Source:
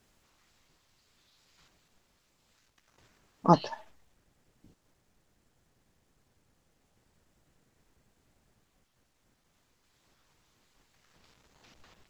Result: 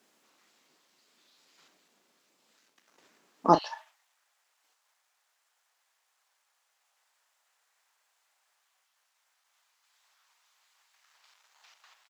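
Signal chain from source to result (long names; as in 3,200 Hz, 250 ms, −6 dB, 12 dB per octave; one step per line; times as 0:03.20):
high-pass filter 220 Hz 24 dB per octave, from 0:03.55 810 Hz
double-tracking delay 36 ms −11 dB
level +1.5 dB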